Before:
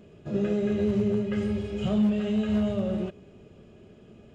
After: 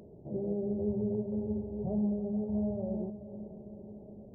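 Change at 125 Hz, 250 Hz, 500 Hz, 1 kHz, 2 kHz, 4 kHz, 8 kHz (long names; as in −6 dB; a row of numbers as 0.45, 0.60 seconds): −7.0 dB, −7.0 dB, −6.5 dB, −8.5 dB, below −40 dB, below −40 dB, can't be measured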